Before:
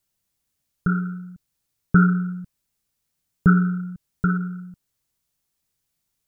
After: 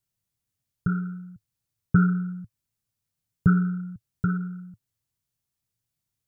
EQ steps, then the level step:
parametric band 110 Hz +12 dB 0.93 octaves
−7.5 dB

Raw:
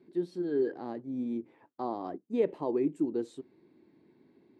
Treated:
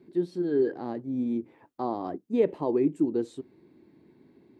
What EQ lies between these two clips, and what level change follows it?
low-shelf EQ 110 Hz +9.5 dB
+3.5 dB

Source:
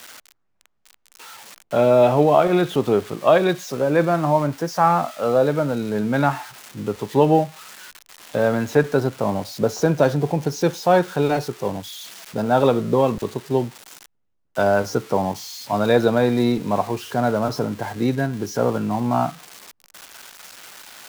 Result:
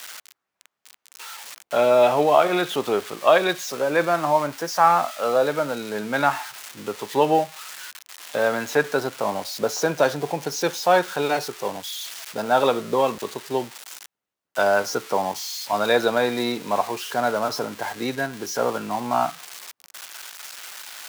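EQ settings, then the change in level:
high-pass filter 980 Hz 6 dB per octave
+4.0 dB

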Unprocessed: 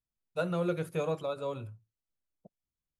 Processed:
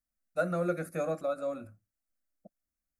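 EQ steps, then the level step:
phaser with its sweep stopped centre 630 Hz, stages 8
+4.0 dB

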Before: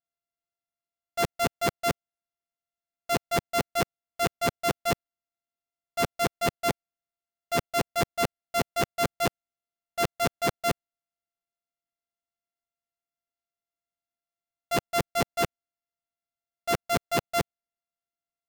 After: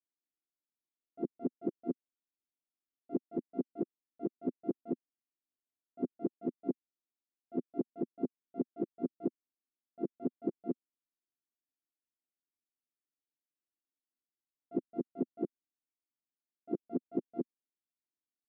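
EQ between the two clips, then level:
flat-topped band-pass 290 Hz, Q 2
+2.0 dB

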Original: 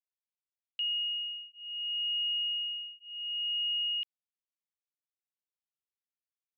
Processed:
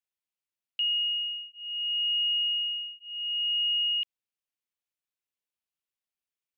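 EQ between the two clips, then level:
parametric band 2,700 Hz +5 dB
0.0 dB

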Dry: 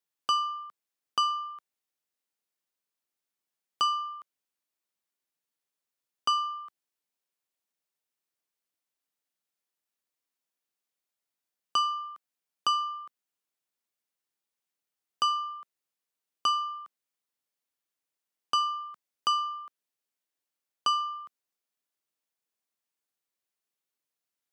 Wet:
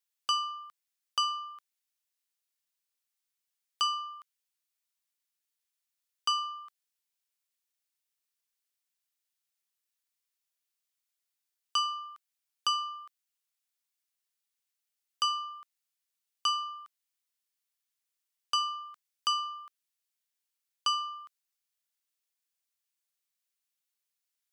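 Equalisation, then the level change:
tilt shelving filter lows −8 dB, about 1,100 Hz
−5.0 dB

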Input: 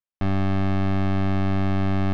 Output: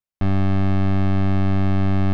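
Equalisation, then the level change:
low-shelf EQ 240 Hz +5 dB
0.0 dB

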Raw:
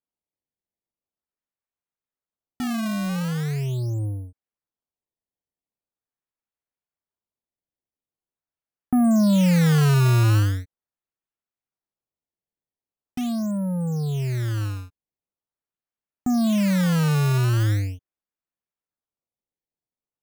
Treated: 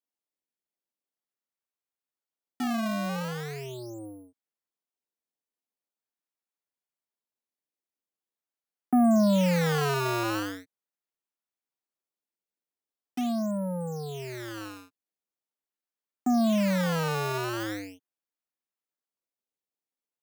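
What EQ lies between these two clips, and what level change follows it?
high-pass filter 200 Hz 24 dB per octave
dynamic equaliser 690 Hz, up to +6 dB, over −42 dBFS, Q 0.98
dynamic equaliser 9,800 Hz, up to −4 dB, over −48 dBFS, Q 1.1
−3.0 dB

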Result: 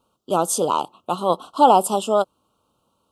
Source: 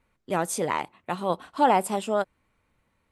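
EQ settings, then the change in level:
high-pass filter 310 Hz 6 dB per octave
Chebyshev band-stop filter 1,300–2,900 Hz, order 3
+8.5 dB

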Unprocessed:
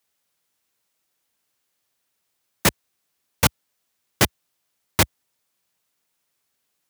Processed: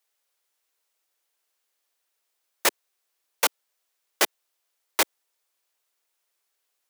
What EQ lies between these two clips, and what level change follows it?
high-pass filter 370 Hz 24 dB per octave
−2.5 dB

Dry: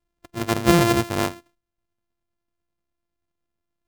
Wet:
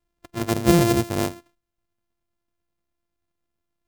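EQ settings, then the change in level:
dynamic equaliser 1,200 Hz, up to −6 dB, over −32 dBFS, Q 1
dynamic equaliser 2,900 Hz, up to −4 dB, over −39 dBFS, Q 0.74
+1.0 dB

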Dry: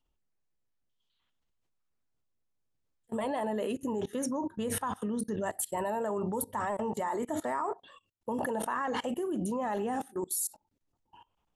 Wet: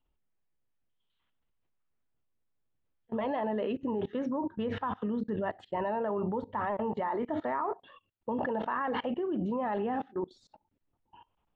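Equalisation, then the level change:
low-pass filter 3,600 Hz 24 dB per octave
high-frequency loss of the air 110 metres
+1.0 dB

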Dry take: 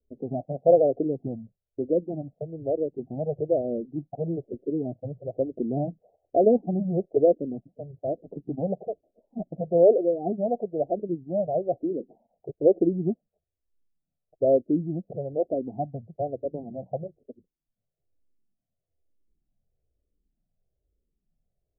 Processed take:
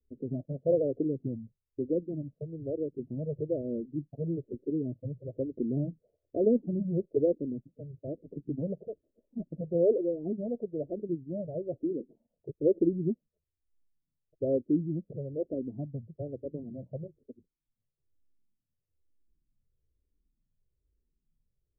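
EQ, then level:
moving average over 58 samples
parametric band 190 Hz −4.5 dB 0.28 octaves
0.0 dB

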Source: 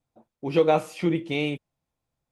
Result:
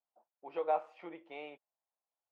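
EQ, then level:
four-pole ladder band-pass 930 Hz, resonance 35%
0.0 dB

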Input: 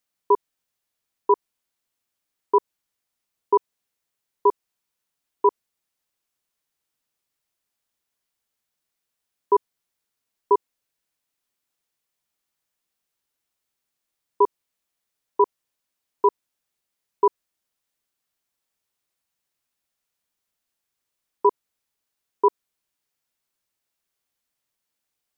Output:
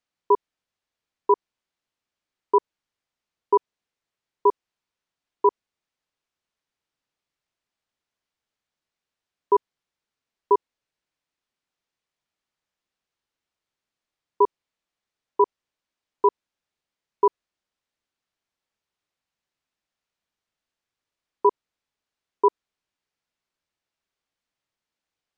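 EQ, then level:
high-frequency loss of the air 95 metres
0.0 dB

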